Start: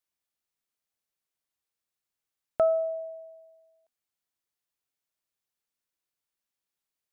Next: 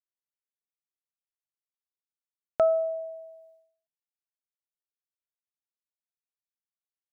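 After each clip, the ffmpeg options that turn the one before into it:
-af "agate=range=0.0224:threshold=0.00158:ratio=3:detection=peak,volume=1.12"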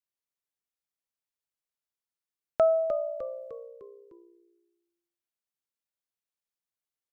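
-filter_complex "[0:a]asplit=6[s0][s1][s2][s3][s4][s5];[s1]adelay=303,afreqshift=-61,volume=0.335[s6];[s2]adelay=606,afreqshift=-122,volume=0.164[s7];[s3]adelay=909,afreqshift=-183,volume=0.0804[s8];[s4]adelay=1212,afreqshift=-244,volume=0.0394[s9];[s5]adelay=1515,afreqshift=-305,volume=0.0193[s10];[s0][s6][s7][s8][s9][s10]amix=inputs=6:normalize=0"

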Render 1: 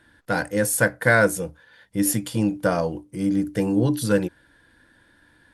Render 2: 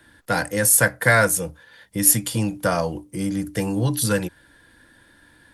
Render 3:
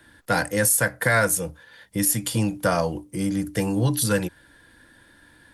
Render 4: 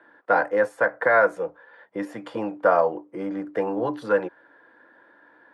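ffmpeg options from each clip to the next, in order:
-filter_complex "[0:a]highshelf=f=6600:g=7.5,bandreject=f=1500:w=25,acrossover=split=170|610|3400[s0][s1][s2][s3];[s1]acompressor=threshold=0.0251:ratio=6[s4];[s0][s4][s2][s3]amix=inputs=4:normalize=0,volume=1.5"
-af "alimiter=limit=0.335:level=0:latency=1:release=161"
-af "asuperpass=centerf=750:order=4:qfactor=0.73,volume=1.78"

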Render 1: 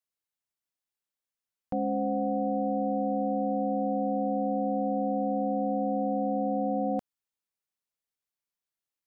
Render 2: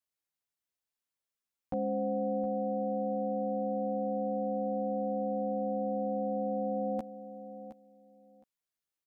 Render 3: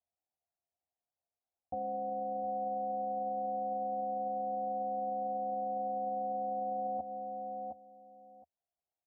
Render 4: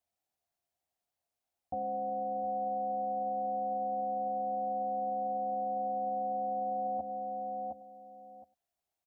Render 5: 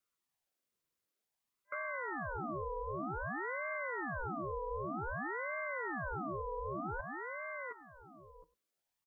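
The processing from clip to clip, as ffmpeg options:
-filter_complex "[0:a]asplit=2[s0][s1];[s1]adelay=13,volume=0.708[s2];[s0][s2]amix=inputs=2:normalize=0,aecho=1:1:716|1432:0.224|0.0381,volume=0.708"
-af "equalizer=f=79:w=2.5:g=10.5,alimiter=level_in=2.82:limit=0.0631:level=0:latency=1:release=152,volume=0.355,lowpass=f=720:t=q:w=7.6,volume=0.531"
-filter_complex "[0:a]bandreject=f=490:w=12,asplit=2[s0][s1];[s1]alimiter=level_in=6.31:limit=0.0631:level=0:latency=1,volume=0.158,volume=0.794[s2];[s0][s2]amix=inputs=2:normalize=0,aecho=1:1:99:0.0891"
-af "afftfilt=real='re*(1-between(b*sr/4096,290,710))':imag='im*(1-between(b*sr/4096,290,710))':win_size=4096:overlap=0.75,firequalizer=gain_entry='entry(210,0);entry(630,-16);entry(930,-4)':delay=0.05:min_phase=1,aeval=exprs='val(0)*sin(2*PI*800*n/s+800*0.7/0.53*sin(2*PI*0.53*n/s))':c=same,volume=2.51"

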